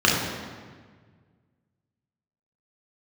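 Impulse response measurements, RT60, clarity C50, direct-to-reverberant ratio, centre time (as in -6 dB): 1.6 s, 1.0 dB, -4.5 dB, 78 ms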